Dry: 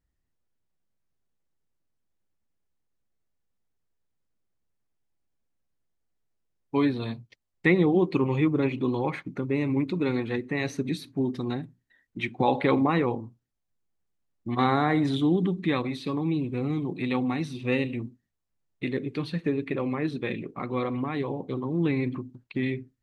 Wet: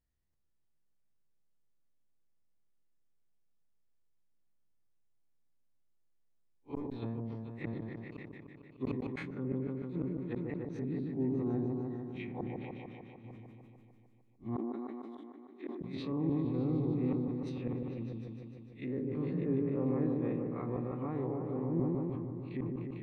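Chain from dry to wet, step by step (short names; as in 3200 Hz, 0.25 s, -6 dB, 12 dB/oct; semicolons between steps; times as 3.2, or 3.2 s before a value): time blur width 84 ms; flipped gate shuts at -19 dBFS, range -41 dB; treble ducked by the level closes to 970 Hz, closed at -31 dBFS; repeats that get brighter 0.15 s, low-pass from 750 Hz, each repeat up 1 oct, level -3 dB; wow and flutter 29 cents; 14.56–15.81 brick-wall FIR high-pass 230 Hz; sustainer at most 21 dB/s; gain -5.5 dB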